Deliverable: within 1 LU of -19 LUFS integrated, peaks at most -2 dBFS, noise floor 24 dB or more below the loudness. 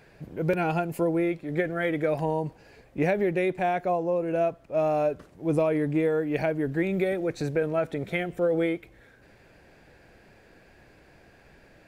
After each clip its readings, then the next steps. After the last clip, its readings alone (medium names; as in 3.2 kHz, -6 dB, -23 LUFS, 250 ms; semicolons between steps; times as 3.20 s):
loudness -27.0 LUFS; peak level -12.5 dBFS; loudness target -19.0 LUFS
-> trim +8 dB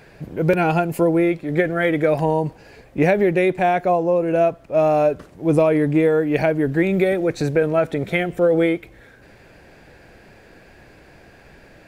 loudness -19.0 LUFS; peak level -4.5 dBFS; noise floor -48 dBFS